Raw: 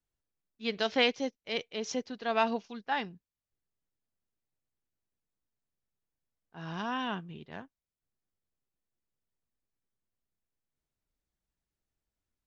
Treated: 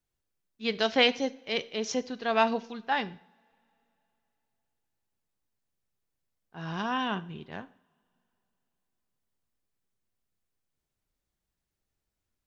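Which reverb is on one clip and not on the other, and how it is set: two-slope reverb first 0.52 s, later 3.2 s, from -26 dB, DRR 13.5 dB; gain +3.5 dB

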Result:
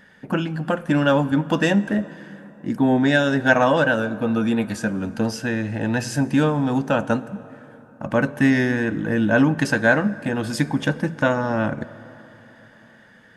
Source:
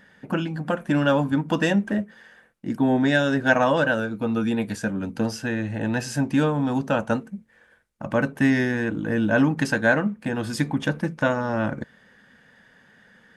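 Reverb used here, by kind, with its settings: plate-style reverb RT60 4 s, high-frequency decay 0.5×, DRR 16.5 dB; gain +2.5 dB

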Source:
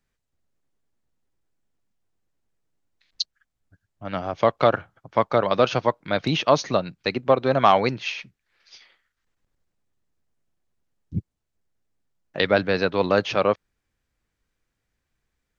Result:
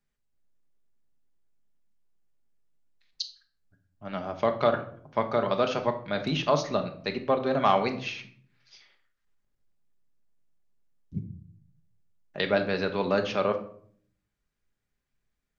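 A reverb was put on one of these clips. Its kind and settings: shoebox room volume 750 m³, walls furnished, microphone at 1.3 m; gain -7 dB

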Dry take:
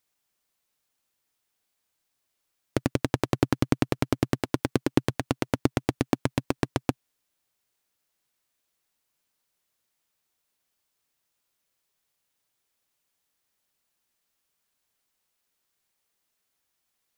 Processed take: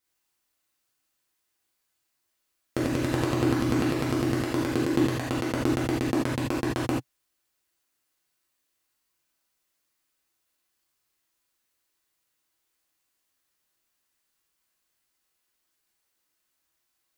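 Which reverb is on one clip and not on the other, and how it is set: non-linear reverb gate 0.11 s flat, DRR -6.5 dB; gain -6 dB

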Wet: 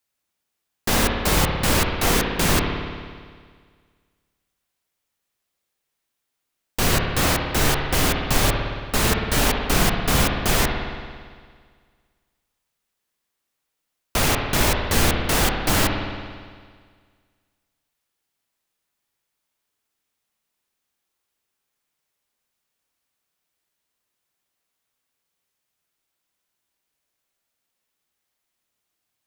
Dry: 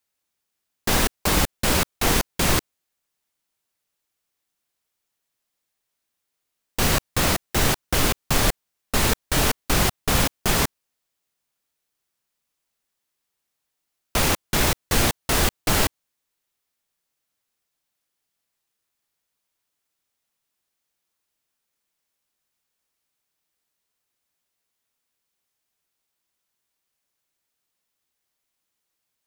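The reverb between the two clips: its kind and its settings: spring tank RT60 1.8 s, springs 56 ms, chirp 45 ms, DRR 2 dB

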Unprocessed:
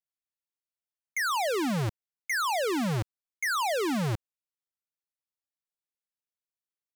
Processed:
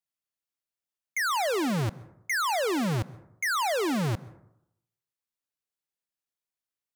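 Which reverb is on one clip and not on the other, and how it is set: plate-style reverb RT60 0.79 s, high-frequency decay 0.35×, pre-delay 0.115 s, DRR 20 dB; gain +1 dB

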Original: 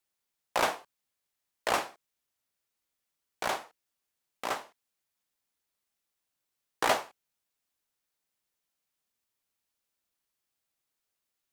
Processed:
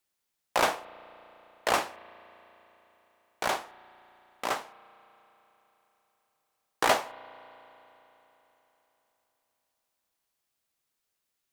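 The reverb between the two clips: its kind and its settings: spring tank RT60 3.8 s, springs 34 ms, chirp 55 ms, DRR 18 dB; gain +2.5 dB

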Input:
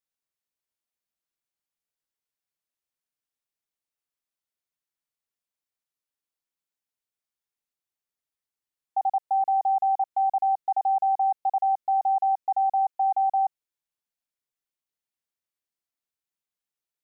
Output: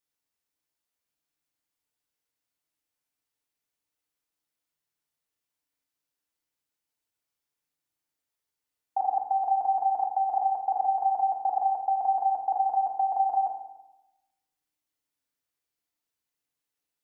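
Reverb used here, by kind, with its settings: FDN reverb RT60 0.98 s, low-frequency decay 1.25×, high-frequency decay 0.8×, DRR 1 dB; gain +1.5 dB

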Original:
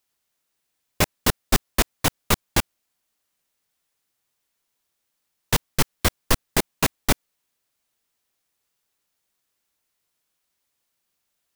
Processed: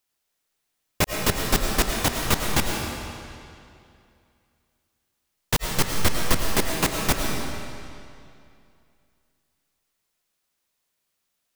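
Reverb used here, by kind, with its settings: digital reverb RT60 2.5 s, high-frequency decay 0.9×, pre-delay 65 ms, DRR 1 dB; gain -2 dB

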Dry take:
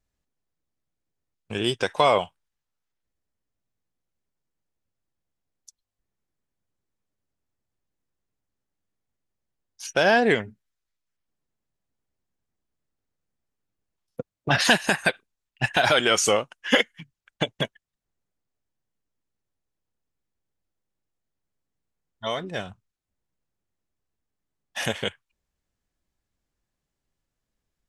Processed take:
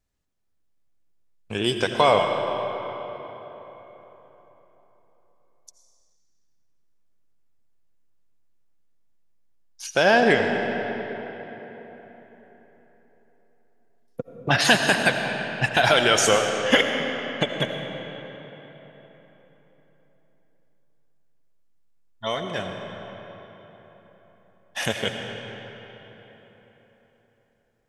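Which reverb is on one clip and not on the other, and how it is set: digital reverb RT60 4.2 s, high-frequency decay 0.65×, pre-delay 45 ms, DRR 4 dB; gain +1 dB

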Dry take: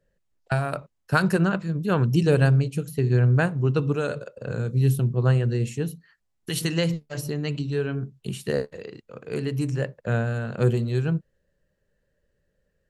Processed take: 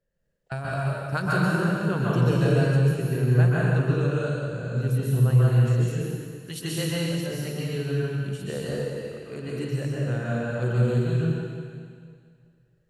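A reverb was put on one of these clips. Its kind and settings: plate-style reverb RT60 2.1 s, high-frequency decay 1×, pre-delay 0.115 s, DRR -6.5 dB; gain -8.5 dB

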